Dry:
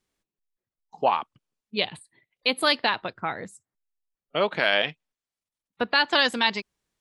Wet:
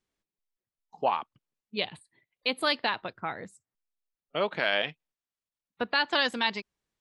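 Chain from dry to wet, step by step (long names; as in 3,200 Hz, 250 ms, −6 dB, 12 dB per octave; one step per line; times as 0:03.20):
high-shelf EQ 9,500 Hz −8.5 dB
level −4.5 dB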